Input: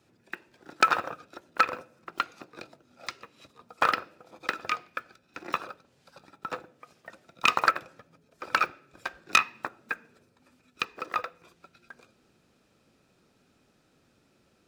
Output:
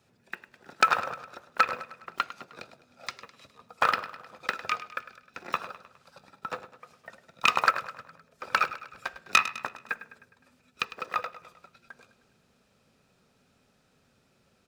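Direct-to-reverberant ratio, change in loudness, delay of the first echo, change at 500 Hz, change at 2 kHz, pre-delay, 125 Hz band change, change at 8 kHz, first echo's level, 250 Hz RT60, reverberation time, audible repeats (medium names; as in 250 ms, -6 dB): no reverb, 0.0 dB, 103 ms, -0.5 dB, 0.0 dB, no reverb, 0.0 dB, 0.0 dB, -14.5 dB, no reverb, no reverb, 4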